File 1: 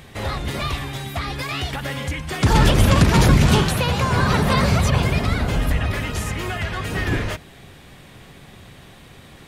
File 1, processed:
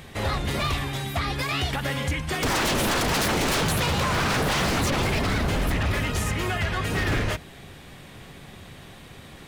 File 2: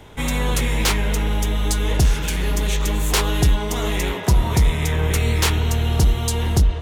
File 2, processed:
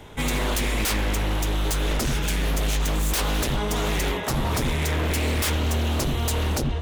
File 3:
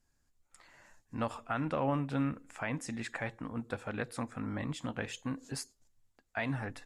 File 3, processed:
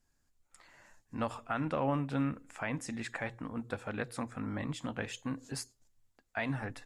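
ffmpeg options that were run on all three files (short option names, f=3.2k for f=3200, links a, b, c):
-af "bandreject=f=60:t=h:w=6,bandreject=f=120:t=h:w=6,aeval=exprs='0.119*(abs(mod(val(0)/0.119+3,4)-2)-1)':c=same"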